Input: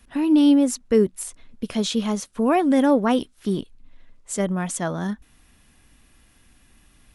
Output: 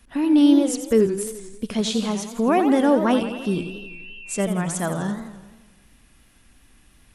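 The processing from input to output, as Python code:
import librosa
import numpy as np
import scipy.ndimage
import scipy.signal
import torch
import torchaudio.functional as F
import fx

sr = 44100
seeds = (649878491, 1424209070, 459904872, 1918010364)

y = fx.dmg_tone(x, sr, hz=2700.0, level_db=-39.0, at=(3.11, 4.42), fade=0.02)
y = fx.echo_warbled(y, sr, ms=86, feedback_pct=61, rate_hz=2.8, cents=188, wet_db=-9.0)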